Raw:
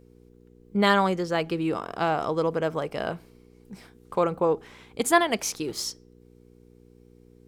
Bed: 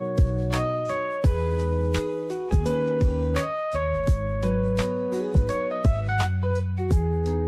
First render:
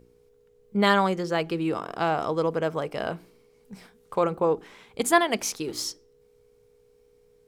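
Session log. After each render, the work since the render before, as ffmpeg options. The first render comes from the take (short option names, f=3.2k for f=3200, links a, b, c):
-af "bandreject=f=60:t=h:w=4,bandreject=f=120:t=h:w=4,bandreject=f=180:t=h:w=4,bandreject=f=240:t=h:w=4,bandreject=f=300:t=h:w=4,bandreject=f=360:t=h:w=4"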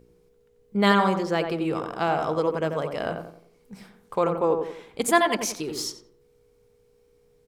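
-filter_complex "[0:a]asplit=2[a][b];[b]adelay=89,lowpass=f=1.5k:p=1,volume=-5dB,asplit=2[c][d];[d]adelay=89,lowpass=f=1.5k:p=1,volume=0.41,asplit=2[e][f];[f]adelay=89,lowpass=f=1.5k:p=1,volume=0.41,asplit=2[g][h];[h]adelay=89,lowpass=f=1.5k:p=1,volume=0.41,asplit=2[i][j];[j]adelay=89,lowpass=f=1.5k:p=1,volume=0.41[k];[a][c][e][g][i][k]amix=inputs=6:normalize=0"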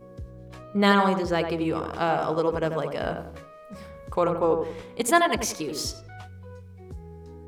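-filter_complex "[1:a]volume=-19dB[a];[0:a][a]amix=inputs=2:normalize=0"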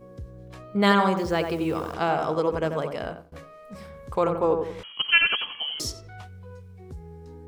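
-filter_complex "[0:a]asettb=1/sr,asplit=3[a][b][c];[a]atrim=end=1.174[d];[b]atrim=start=1.17:end=1.94,asetpts=PTS-STARTPTS,afade=t=in:d=0.004:c=qsin,afade=t=out:st=0.766:d=0.004:c=qsin,acrusher=bits=9:dc=4:mix=0:aa=0.000001[e];[c]atrim=start=1.936[f];[d][e]acrossfade=d=0.004:c1=hsin:c2=qsin[g];[g][f]acrossfade=d=0.004:c1=qsin:c2=hsin,asettb=1/sr,asplit=3[h][i][j];[h]atrim=end=4.834[k];[i]atrim=start=4.83:end=5.8,asetpts=PTS-STARTPTS,afade=t=in:d=0.004:c=qsin,afade=t=out:st=0.966:d=0.004:c=qsin,lowpass=f=2.9k:t=q:w=0.5098,lowpass=f=2.9k:t=q:w=0.6013,lowpass=f=2.9k:t=q:w=0.9,lowpass=f=2.9k:t=q:w=2.563,afreqshift=-3400[l];[j]atrim=start=5.796[m];[k][l]acrossfade=d=0.004:c1=hsin:c2=qsin[n];[n][m]acrossfade=d=0.004:c1=qsin:c2=hsin,asplit=2[o][p];[o]atrim=end=3.32,asetpts=PTS-STARTPTS,afade=t=out:st=2.89:d=0.43:silence=0.0668344[q];[p]atrim=start=3.32,asetpts=PTS-STARTPTS,afade=t=in:d=0.004:c=hsin:silence=0.0668344[r];[q][r]concat=n=2:v=0:a=1"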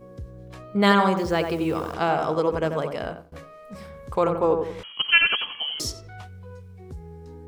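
-af "volume=1.5dB"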